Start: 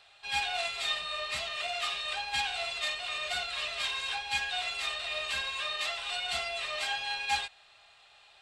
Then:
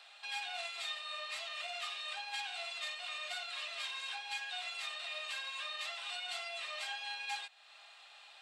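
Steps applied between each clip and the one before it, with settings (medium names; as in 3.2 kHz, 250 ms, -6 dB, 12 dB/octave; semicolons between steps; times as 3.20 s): high-pass 620 Hz 12 dB/octave; compression 2:1, threshold -49 dBFS, peak gain reduction 13 dB; trim +2 dB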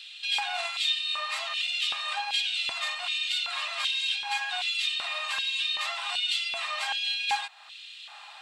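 LFO high-pass square 1.3 Hz 900–3100 Hz; trim +8.5 dB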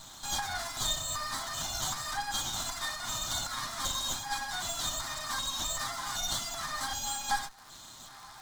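comb filter that takes the minimum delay 7.7 ms; static phaser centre 1.1 kHz, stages 4; crackle 250 per s -45 dBFS; trim +3 dB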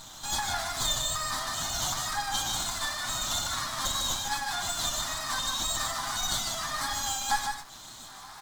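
wow and flutter 54 cents; on a send: delay 152 ms -5 dB; on the sum: trim +2.5 dB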